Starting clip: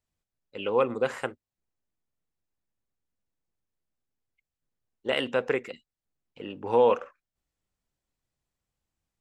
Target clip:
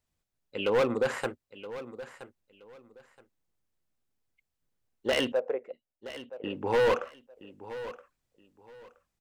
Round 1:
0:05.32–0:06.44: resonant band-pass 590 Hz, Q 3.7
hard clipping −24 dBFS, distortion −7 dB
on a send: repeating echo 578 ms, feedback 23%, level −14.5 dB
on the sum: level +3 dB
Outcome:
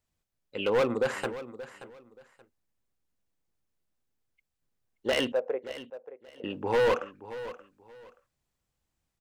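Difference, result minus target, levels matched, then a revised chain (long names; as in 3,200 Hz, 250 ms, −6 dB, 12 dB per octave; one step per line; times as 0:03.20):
echo 394 ms early
0:05.32–0:06.44: resonant band-pass 590 Hz, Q 3.7
hard clipping −24 dBFS, distortion −7 dB
on a send: repeating echo 972 ms, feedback 23%, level −14.5 dB
on the sum: level +3 dB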